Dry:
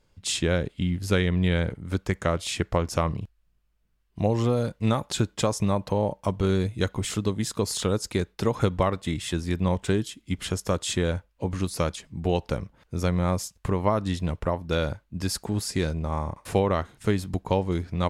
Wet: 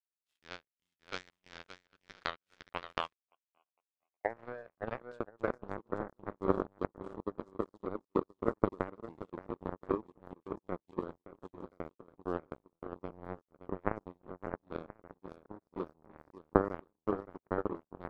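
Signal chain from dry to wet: on a send: bouncing-ball echo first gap 570 ms, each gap 0.8×, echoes 5; on the sum: band-pass sweep 1.3 kHz -> 350 Hz, 2.64–6.01 s; 3.13–4.25 s: cascade formant filter a; power-law waveshaper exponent 3; trim +9 dB

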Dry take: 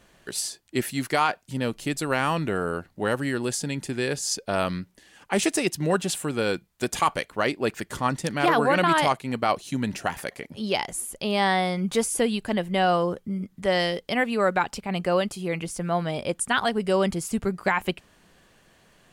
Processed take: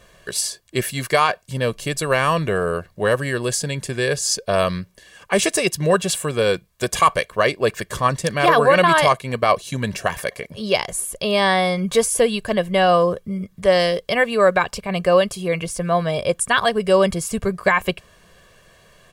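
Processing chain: comb 1.8 ms, depth 62%; trim +5 dB

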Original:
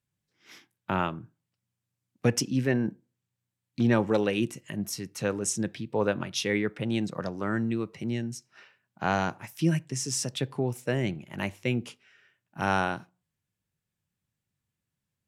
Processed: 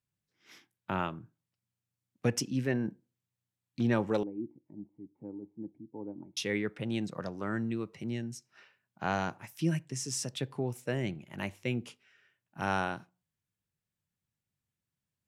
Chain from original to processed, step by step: 4.23–6.37 s: cascade formant filter u; trim -5 dB

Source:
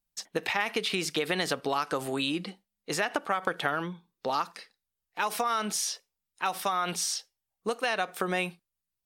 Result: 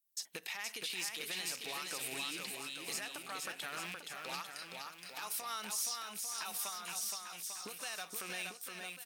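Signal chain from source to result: rattle on loud lows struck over -43 dBFS, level -27 dBFS; recorder AGC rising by 27 dB/s; saturation -16 dBFS, distortion -19 dB; high-pass 67 Hz; pre-emphasis filter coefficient 0.9; 6.68–7.82 s: compression 2:1, threshold -46 dBFS, peak gain reduction 11 dB; peak limiter -27.5 dBFS, peak gain reduction 10 dB; on a send: bouncing-ball echo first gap 470 ms, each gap 0.8×, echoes 5; on the sum: trim -1 dB

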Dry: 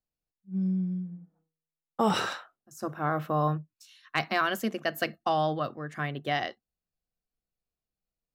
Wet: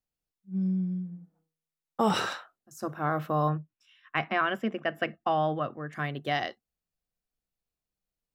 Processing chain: 3.49–5.93 s: Savitzky-Golay filter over 25 samples

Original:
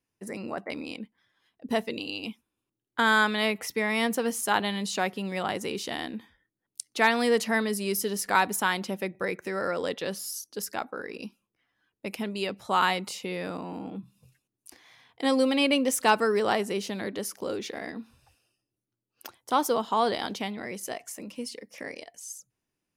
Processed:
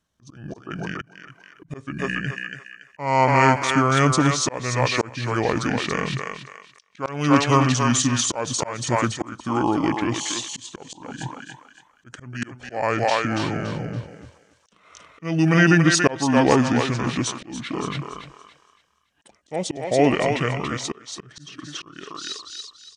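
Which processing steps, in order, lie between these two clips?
pitch shift -8.5 st; thinning echo 283 ms, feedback 33%, high-pass 620 Hz, level -3 dB; slow attack 357 ms; trim +8.5 dB

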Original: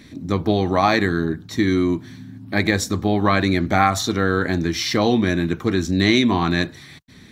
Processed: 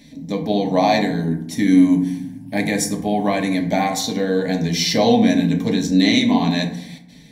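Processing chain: 1.20–3.55 s: graphic EQ with 31 bands 500 Hz -3 dB, 4 kHz -9 dB, 10 kHz +11 dB; level rider; static phaser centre 350 Hz, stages 6; FDN reverb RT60 0.75 s, low-frequency decay 1.5×, high-frequency decay 0.45×, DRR 3 dB

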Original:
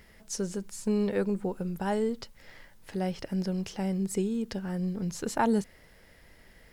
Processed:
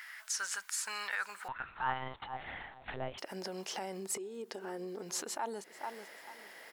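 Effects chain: 4.15–5.03 s: peaking EQ 390 Hz +8.5 dB 0.86 oct; feedback delay 440 ms, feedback 25%, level -23.5 dB; high-pass sweep 1.5 kHz -> 360 Hz, 1.51–3.17 s; compression 8:1, threshold -34 dBFS, peak gain reduction 21.5 dB; peak limiter -31.5 dBFS, peak gain reduction 9 dB; resonant low shelf 580 Hz -9 dB, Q 1.5; 1.48–3.18 s: monotone LPC vocoder at 8 kHz 130 Hz; trim +6.5 dB

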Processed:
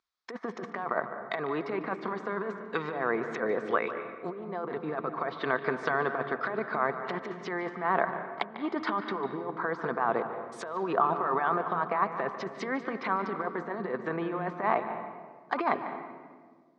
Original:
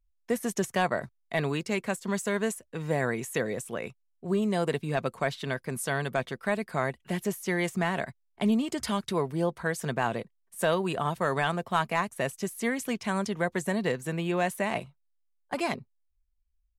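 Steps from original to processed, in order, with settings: low-pass that closes with the level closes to 1.2 kHz, closed at -28 dBFS; treble shelf 3.4 kHz +6.5 dB; compressor with a negative ratio -31 dBFS, ratio -0.5; cabinet simulation 440–4800 Hz, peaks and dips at 570 Hz -7 dB, 1.2 kHz +8 dB, 2.8 kHz -9 dB; reverberation RT60 1.6 s, pre-delay 147 ms, DRR 8 dB; trim +6.5 dB

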